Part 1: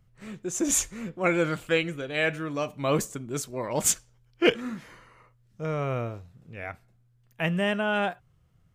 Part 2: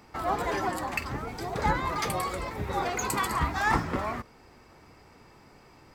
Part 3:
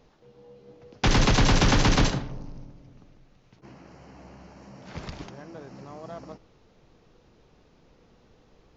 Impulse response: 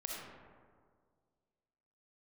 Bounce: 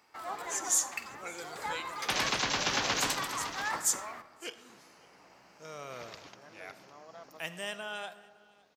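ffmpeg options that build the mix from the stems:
-filter_complex "[0:a]highshelf=f=3.4k:t=q:w=1.5:g=10,dynaudnorm=f=260:g=9:m=8.5dB,volume=-15.5dB,asplit=3[a][b][c];[b]volume=-10dB[d];[c]volume=-23.5dB[e];[1:a]volume=-7.5dB,asplit=2[f][g];[g]volume=-10.5dB[h];[2:a]adelay=1050,volume=-4dB,asplit=2[i][j];[j]volume=-10dB[k];[3:a]atrim=start_sample=2205[l];[d][h]amix=inputs=2:normalize=0[m];[m][l]afir=irnorm=-1:irlink=0[n];[e][k]amix=inputs=2:normalize=0,aecho=0:1:558:1[o];[a][f][i][n][o]amix=inputs=5:normalize=0,highpass=f=1.1k:p=1"

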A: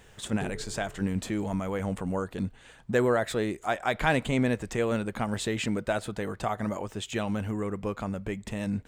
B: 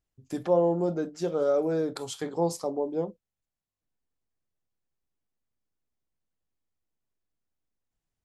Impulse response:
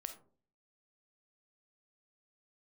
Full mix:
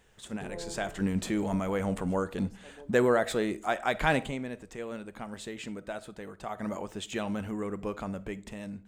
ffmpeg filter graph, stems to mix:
-filter_complex "[0:a]dynaudnorm=f=210:g=7:m=10dB,volume=-5dB,afade=t=out:st=4.14:d=0.25:silence=0.298538,afade=t=in:st=6.43:d=0.26:silence=0.446684,asplit=3[a][b][c];[b]volume=-3dB[d];[1:a]volume=-14dB[e];[c]apad=whole_len=363433[f];[e][f]sidechaincompress=threshold=-41dB:ratio=8:attack=16:release=706[g];[2:a]atrim=start_sample=2205[h];[d][h]afir=irnorm=-1:irlink=0[i];[a][g][i]amix=inputs=3:normalize=0,equalizer=f=110:t=o:w=0.29:g=-10"

